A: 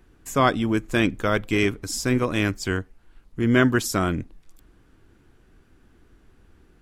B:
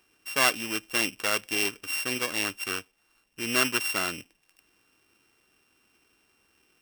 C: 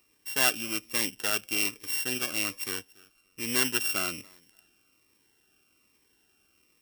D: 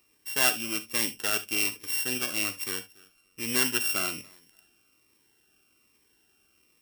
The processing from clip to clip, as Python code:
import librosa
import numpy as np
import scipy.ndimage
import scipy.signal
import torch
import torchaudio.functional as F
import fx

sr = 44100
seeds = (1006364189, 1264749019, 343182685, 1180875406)

y1 = np.r_[np.sort(x[:len(x) // 16 * 16].reshape(-1, 16), axis=1).ravel(), x[len(x) // 16 * 16:]]
y1 = fx.highpass(y1, sr, hz=1300.0, slope=6)
y2 = fx.high_shelf(y1, sr, hz=11000.0, db=7.5)
y2 = fx.echo_feedback(y2, sr, ms=285, feedback_pct=20, wet_db=-24.0)
y2 = fx.notch_cascade(y2, sr, direction='falling', hz=1.2)
y2 = F.gain(torch.from_numpy(y2), -1.5).numpy()
y3 = fx.rev_gated(y2, sr, seeds[0], gate_ms=90, shape='flat', drr_db=10.5)